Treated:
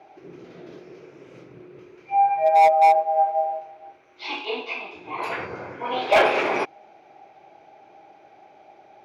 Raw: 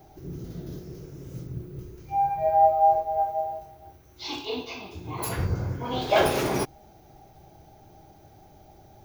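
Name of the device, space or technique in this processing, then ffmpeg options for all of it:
megaphone: -af "highpass=470,lowpass=2600,equalizer=f=2400:t=o:w=0.36:g=9,asoftclip=type=hard:threshold=0.15,volume=2"

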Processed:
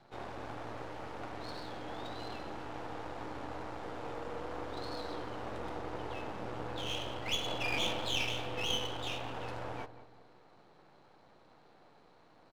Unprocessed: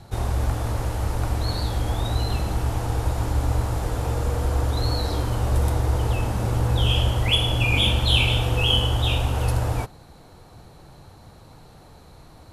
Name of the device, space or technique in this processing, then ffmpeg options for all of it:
crystal radio: -filter_complex "[0:a]asettb=1/sr,asplit=3[s0][s1][s2];[s0]atrim=end=7.464[s3];[s1]atrim=start=7.46:end=8.09,asetpts=PTS-STARTPTS,afade=t=in:d=0.004:c=qsin,afade=t=out:st=0.626:d=0.004:c=qsin,equalizer=f=680:w=0.9:g=4.5[s4];[s2]atrim=start=8.086[s5];[s3][s4]acrossfade=d=0.004:c1=hsin:c2=qsin[s6];[s6][s5]acrossfade=d=0.004:c1=qsin:c2=hsin,highpass=270,lowpass=3200,aeval=exprs='if(lt(val(0),0),0.251*val(0),val(0))':c=same,asplit=2[s7][s8];[s8]adelay=186,lowpass=f=1600:p=1,volume=0.224,asplit=2[s9][s10];[s10]adelay=186,lowpass=f=1600:p=1,volume=0.45,asplit=2[s11][s12];[s12]adelay=186,lowpass=f=1600:p=1,volume=0.45,asplit=2[s13][s14];[s14]adelay=186,lowpass=f=1600:p=1,volume=0.45[s15];[s7][s9][s11][s13][s15]amix=inputs=5:normalize=0,volume=0.447"

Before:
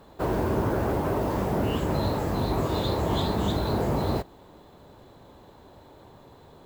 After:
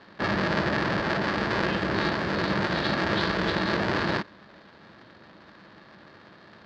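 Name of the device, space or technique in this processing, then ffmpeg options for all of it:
ring modulator pedal into a guitar cabinet: -af "aeval=exprs='val(0)*sgn(sin(2*PI*250*n/s))':c=same,highpass=96,equalizer=f=140:t=q:w=4:g=-4,equalizer=f=210:t=q:w=4:g=6,equalizer=f=440:t=q:w=4:g=-3,equalizer=f=740:t=q:w=4:g=-5,equalizer=f=1700:t=q:w=4:g=9,equalizer=f=4600:t=q:w=4:g=6,lowpass=f=4600:w=0.5412,lowpass=f=4600:w=1.3066"

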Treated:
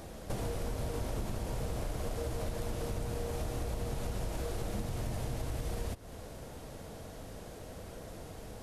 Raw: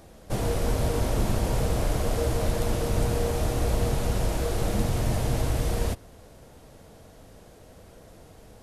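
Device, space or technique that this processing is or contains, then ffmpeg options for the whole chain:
serial compression, peaks first: -af "acompressor=threshold=0.0224:ratio=4,acompressor=threshold=0.00562:ratio=1.5,volume=1.58"

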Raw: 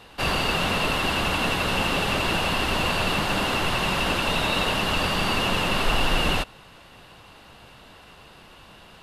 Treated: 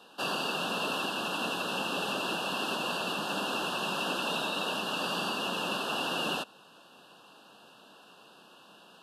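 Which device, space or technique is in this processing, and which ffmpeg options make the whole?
PA system with an anti-feedback notch: -af "highpass=f=190:w=0.5412,highpass=f=190:w=1.3066,asuperstop=centerf=2100:order=8:qfactor=2.5,alimiter=limit=0.168:level=0:latency=1:release=465,volume=0.501"

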